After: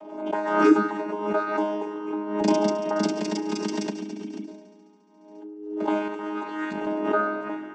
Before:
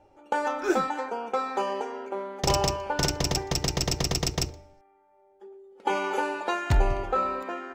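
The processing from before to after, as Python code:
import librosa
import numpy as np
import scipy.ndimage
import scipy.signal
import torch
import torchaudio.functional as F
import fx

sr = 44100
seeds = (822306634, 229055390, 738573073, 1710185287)

p1 = fx.chord_vocoder(x, sr, chord='bare fifth', root=56)
p2 = fx.low_shelf(p1, sr, hz=160.0, db=11.0, at=(2.41, 3.18))
p3 = fx.formant_cascade(p2, sr, vowel='i', at=(3.9, 4.47), fade=0.02)
p4 = fx.over_compress(p3, sr, threshold_db=-34.0, ratio=-1.0, at=(6.08, 6.87))
p5 = p4 + fx.echo_heads(p4, sr, ms=70, heads='first and second', feedback_pct=73, wet_db=-18, dry=0)
p6 = fx.pre_swell(p5, sr, db_per_s=59.0)
y = p6 * 10.0 ** (2.5 / 20.0)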